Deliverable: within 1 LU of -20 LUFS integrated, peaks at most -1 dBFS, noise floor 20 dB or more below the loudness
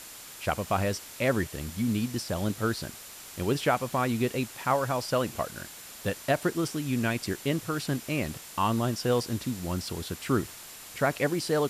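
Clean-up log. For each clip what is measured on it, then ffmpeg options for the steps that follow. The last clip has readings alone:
steady tone 7200 Hz; tone level -54 dBFS; noise floor -45 dBFS; noise floor target -50 dBFS; loudness -29.5 LUFS; peak -12.5 dBFS; loudness target -20.0 LUFS
-> -af "bandreject=f=7.2k:w=30"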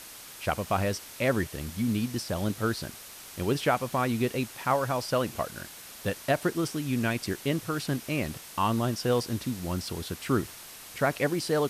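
steady tone none; noise floor -46 dBFS; noise floor target -50 dBFS
-> -af "afftdn=nr=6:nf=-46"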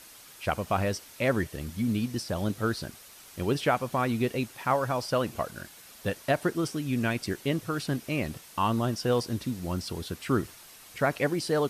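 noise floor -51 dBFS; loudness -30.0 LUFS; peak -12.5 dBFS; loudness target -20.0 LUFS
-> -af "volume=10dB"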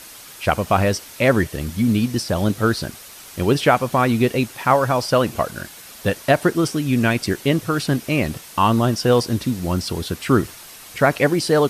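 loudness -20.0 LUFS; peak -2.5 dBFS; noise floor -41 dBFS

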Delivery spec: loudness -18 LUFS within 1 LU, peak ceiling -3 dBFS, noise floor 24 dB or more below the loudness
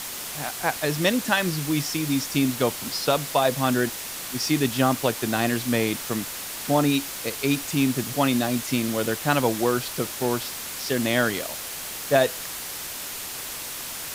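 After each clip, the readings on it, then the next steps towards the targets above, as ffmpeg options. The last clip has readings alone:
noise floor -34 dBFS; noise floor target -49 dBFS; loudness -24.5 LUFS; peak -7.5 dBFS; loudness target -18.0 LUFS
-> -af "afftdn=nr=15:nf=-34"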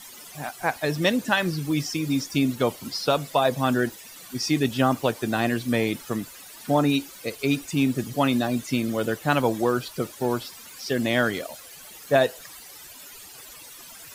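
noise floor -44 dBFS; noise floor target -49 dBFS
-> -af "afftdn=nr=6:nf=-44"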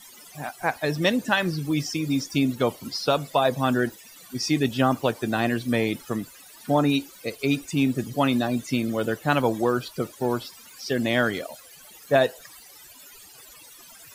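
noise floor -48 dBFS; noise floor target -49 dBFS
-> -af "afftdn=nr=6:nf=-48"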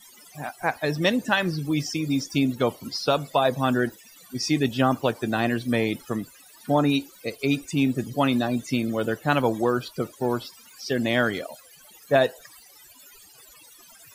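noise floor -51 dBFS; loudness -25.0 LUFS; peak -8.0 dBFS; loudness target -18.0 LUFS
-> -af "volume=7dB,alimiter=limit=-3dB:level=0:latency=1"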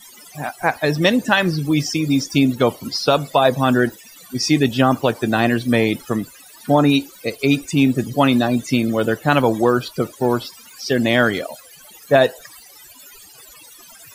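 loudness -18.0 LUFS; peak -3.0 dBFS; noise floor -44 dBFS

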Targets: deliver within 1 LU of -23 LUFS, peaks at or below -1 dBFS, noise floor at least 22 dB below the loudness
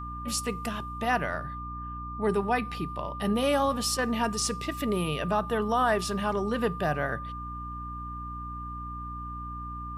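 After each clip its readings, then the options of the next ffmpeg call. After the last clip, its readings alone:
hum 60 Hz; harmonics up to 300 Hz; hum level -37 dBFS; steady tone 1200 Hz; tone level -37 dBFS; loudness -30.0 LUFS; peak -13.5 dBFS; loudness target -23.0 LUFS
-> -af "bandreject=f=60:t=h:w=6,bandreject=f=120:t=h:w=6,bandreject=f=180:t=h:w=6,bandreject=f=240:t=h:w=6,bandreject=f=300:t=h:w=6"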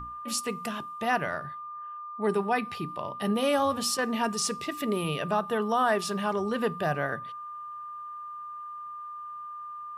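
hum none; steady tone 1200 Hz; tone level -37 dBFS
-> -af "bandreject=f=1.2k:w=30"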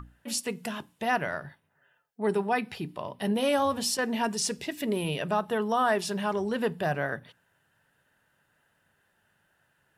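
steady tone none; loudness -29.5 LUFS; peak -14.0 dBFS; loudness target -23.0 LUFS
-> -af "volume=6.5dB"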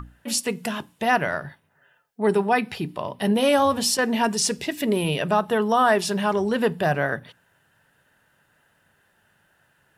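loudness -23.0 LUFS; peak -7.5 dBFS; noise floor -65 dBFS

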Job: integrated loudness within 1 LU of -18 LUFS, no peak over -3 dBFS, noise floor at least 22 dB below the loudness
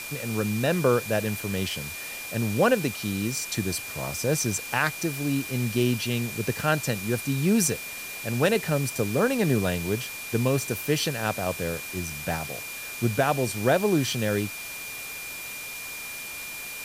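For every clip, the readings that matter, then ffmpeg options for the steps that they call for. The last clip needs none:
steady tone 2400 Hz; tone level -37 dBFS; noise floor -37 dBFS; noise floor target -49 dBFS; loudness -26.5 LUFS; peak -8.5 dBFS; loudness target -18.0 LUFS
-> -af "bandreject=f=2.4k:w=30"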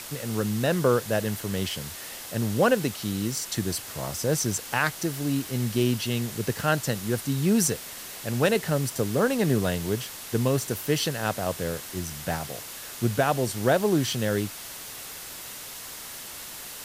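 steady tone none; noise floor -40 dBFS; noise floor target -49 dBFS
-> -af "afftdn=nr=9:nf=-40"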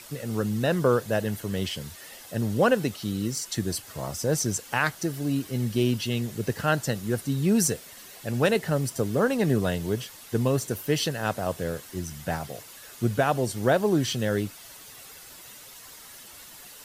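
noise floor -47 dBFS; noise floor target -49 dBFS
-> -af "afftdn=nr=6:nf=-47"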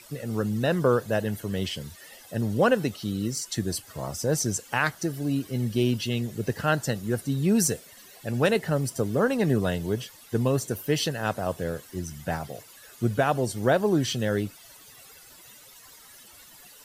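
noise floor -51 dBFS; loudness -27.0 LUFS; peak -9.5 dBFS; loudness target -18.0 LUFS
-> -af "volume=9dB,alimiter=limit=-3dB:level=0:latency=1"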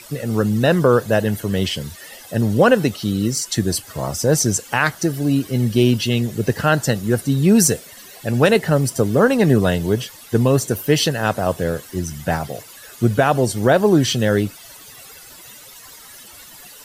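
loudness -18.5 LUFS; peak -3.0 dBFS; noise floor -42 dBFS

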